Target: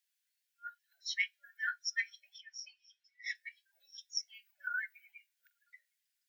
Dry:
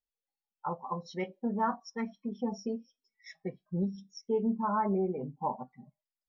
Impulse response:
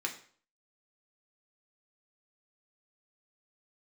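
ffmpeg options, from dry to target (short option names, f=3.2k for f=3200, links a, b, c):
-filter_complex "[0:a]asettb=1/sr,asplit=3[a][b][c];[a]atrim=end=2.384[d];[b]atrim=start=2.38:end=3.35,asetpts=PTS-STARTPTS,afade=t=in:d=0.004:c=qsin,afade=t=out:st=0.966:d=0.004:c=qsin,highpass=120,lowpass=4.1k[e];[c]atrim=start=3.346[f];[d][e]acrossfade=d=0.004:c1=hsin:c2=qsin[g];[g][f]acrossfade=d=0.004:c1=qsin:c2=hsin,afftfilt=real='re*(1-between(b*sr/4096,240,1400))':imag='im*(1-between(b*sr/4096,240,1400))':win_size=4096:overlap=0.75,afftfilt=real='re*gte(b*sr/1024,560*pow(1600/560,0.5+0.5*sin(2*PI*2.5*pts/sr)))':imag='im*gte(b*sr/1024,560*pow(1600/560,0.5+0.5*sin(2*PI*2.5*pts/sr)))':win_size=1024:overlap=0.75,volume=11.5dB"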